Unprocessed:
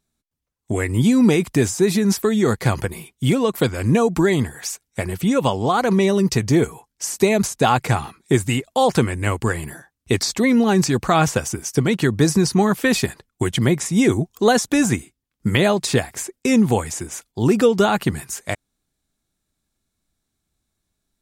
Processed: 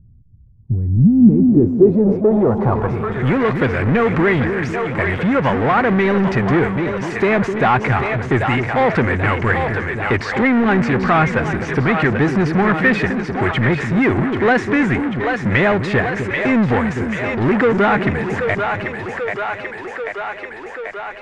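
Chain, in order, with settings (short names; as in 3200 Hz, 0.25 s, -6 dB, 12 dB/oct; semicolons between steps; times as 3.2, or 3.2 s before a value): split-band echo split 450 Hz, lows 0.255 s, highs 0.787 s, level -10 dB; power-law curve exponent 0.5; low-pass sweep 110 Hz -> 1900 Hz, 0.54–3.41; gain -5 dB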